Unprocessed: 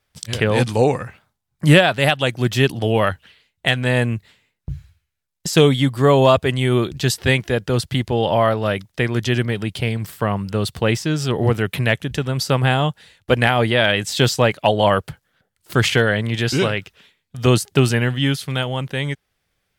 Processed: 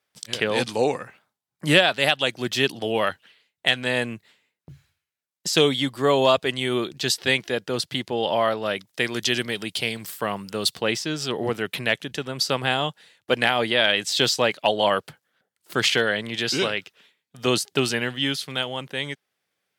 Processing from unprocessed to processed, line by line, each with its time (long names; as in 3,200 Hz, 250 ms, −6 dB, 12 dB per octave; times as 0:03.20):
0:08.87–0:10.75: high-shelf EQ 3,800 Hz +8.5 dB
whole clip: high-pass filter 230 Hz 12 dB per octave; dynamic equaliser 4,300 Hz, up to +7 dB, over −36 dBFS, Q 0.89; level −5 dB